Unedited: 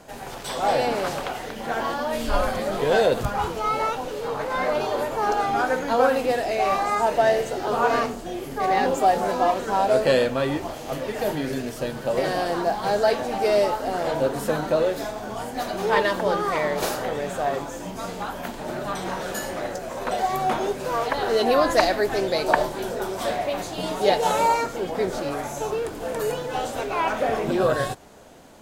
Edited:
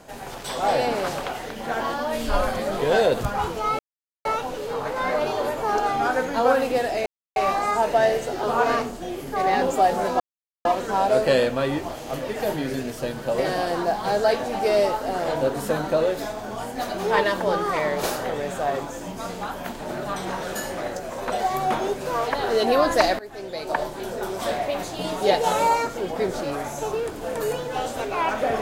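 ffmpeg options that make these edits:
-filter_complex "[0:a]asplit=5[s0][s1][s2][s3][s4];[s0]atrim=end=3.79,asetpts=PTS-STARTPTS,afade=t=out:st=3.786:d=0.004:c=hsin,apad=pad_dur=0.46[s5];[s1]atrim=start=3.79:end=6.6,asetpts=PTS-STARTPTS,afade=t=in:d=0.004:c=hsin,afade=t=out:st=2.806:d=0.004:c=hsin,apad=pad_dur=0.3[s6];[s2]atrim=start=6.6:end=9.44,asetpts=PTS-STARTPTS,afade=t=in:d=0.004:c=hsin,afade=t=out:st=2.836:d=0.004:c=hsin,apad=pad_dur=0.45[s7];[s3]atrim=start=9.44:end=21.98,asetpts=PTS-STARTPTS,afade=t=in:d=0.004:c=hsin,afade=t=out:st=12.536:d=0.004:c=hsin:silence=0.105925[s8];[s4]atrim=start=21.98,asetpts=PTS-STARTPTS,afade=t=in:d=1.17:silence=0.105925[s9];[s5][s6][s7][s8][s9]concat=n=5:v=0:a=1"

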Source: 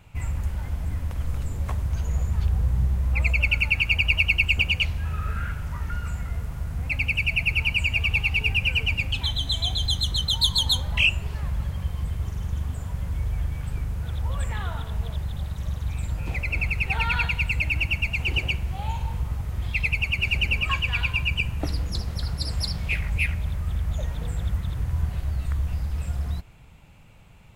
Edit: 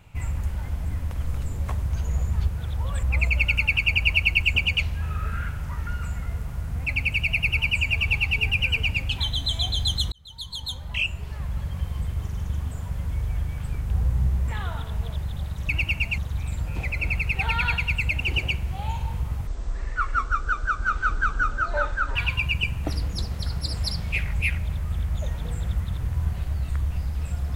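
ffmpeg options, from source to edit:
-filter_complex "[0:a]asplit=11[s0][s1][s2][s3][s4][s5][s6][s7][s8][s9][s10];[s0]atrim=end=2.482[s11];[s1]atrim=start=13.928:end=14.482[s12];[s2]atrim=start=3.058:end=10.15,asetpts=PTS-STARTPTS,afade=t=out:st=7.088:d=0.004:c=hsin[s13];[s3]atrim=start=10.15:end=13.932,asetpts=PTS-STARTPTS,afade=t=in:d=1.73[s14];[s4]atrim=start=2.478:end=3.062[s15];[s5]atrim=start=14.478:end=15.692[s16];[s6]atrim=start=17.708:end=18.202[s17];[s7]atrim=start=15.688:end=17.712[s18];[s8]atrim=start=18.198:end=19.474[s19];[s9]atrim=start=19.47:end=20.92,asetpts=PTS-STARTPTS,asetrate=23814,aresample=44100[s20];[s10]atrim=start=20.916[s21];[s11][s12]acrossfade=d=0.004:c1=hsin:c2=hsin[s22];[s13][s14]concat=n=2:v=0:a=1[s23];[s22][s23]acrossfade=d=0.004:c1=hsin:c2=hsin[s24];[s24][s15]acrossfade=d=0.004:c1=hsin:c2=hsin[s25];[s25][s16]acrossfade=d=0.004:c1=hsin:c2=hsin[s26];[s26][s17]acrossfade=d=0.004:c1=hsin:c2=hsin[s27];[s27][s18]acrossfade=d=0.004:c1=hsin:c2=hsin[s28];[s28][s19]acrossfade=d=0.004:c1=hsin:c2=hsin[s29];[s29][s20]acrossfade=d=0.004:c1=hsin:c2=hsin[s30];[s30][s21]acrossfade=d=0.004:c1=hsin:c2=hsin"

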